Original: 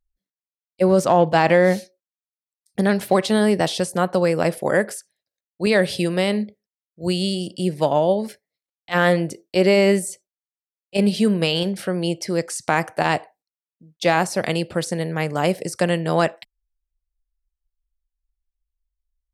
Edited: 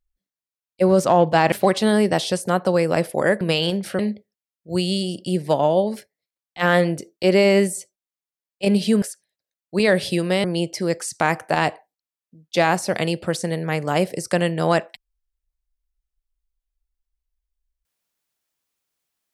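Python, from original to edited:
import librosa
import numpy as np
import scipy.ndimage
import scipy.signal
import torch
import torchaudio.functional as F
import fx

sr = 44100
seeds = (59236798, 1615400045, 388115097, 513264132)

y = fx.edit(x, sr, fx.cut(start_s=1.52, length_s=1.48),
    fx.swap(start_s=4.89, length_s=1.42, other_s=11.34, other_length_s=0.58), tone=tone)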